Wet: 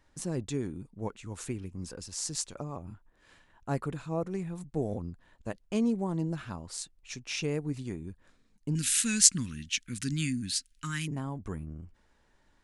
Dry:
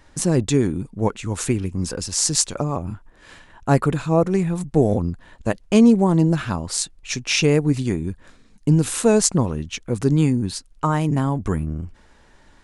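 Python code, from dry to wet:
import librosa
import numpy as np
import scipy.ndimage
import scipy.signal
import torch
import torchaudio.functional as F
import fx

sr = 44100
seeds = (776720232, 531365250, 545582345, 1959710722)

y = fx.curve_eq(x, sr, hz=(130.0, 260.0, 420.0, 720.0, 1600.0, 2800.0), db=(0, 4, -16, -28, 11, 15), at=(8.75, 11.08))
y = F.gain(torch.from_numpy(y), -15.0).numpy()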